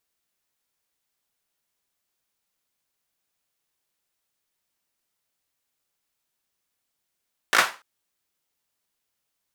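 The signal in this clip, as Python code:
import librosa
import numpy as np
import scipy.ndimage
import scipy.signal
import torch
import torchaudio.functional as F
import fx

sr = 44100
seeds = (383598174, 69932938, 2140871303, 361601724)

y = fx.drum_clap(sr, seeds[0], length_s=0.29, bursts=4, spacing_ms=18, hz=1300.0, decay_s=0.3)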